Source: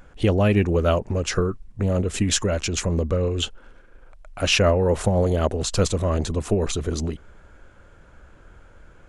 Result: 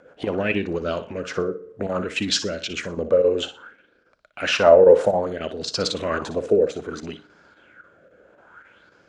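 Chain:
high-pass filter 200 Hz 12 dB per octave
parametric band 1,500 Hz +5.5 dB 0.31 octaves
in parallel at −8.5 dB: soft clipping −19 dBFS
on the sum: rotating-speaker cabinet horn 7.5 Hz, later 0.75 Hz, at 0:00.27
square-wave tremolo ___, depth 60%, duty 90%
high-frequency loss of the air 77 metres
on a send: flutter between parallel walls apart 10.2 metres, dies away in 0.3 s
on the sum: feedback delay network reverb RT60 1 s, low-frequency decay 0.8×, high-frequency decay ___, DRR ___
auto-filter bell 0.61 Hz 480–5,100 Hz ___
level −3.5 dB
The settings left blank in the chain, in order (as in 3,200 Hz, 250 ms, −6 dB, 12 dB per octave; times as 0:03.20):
3.7 Hz, 0.45×, 18 dB, +15 dB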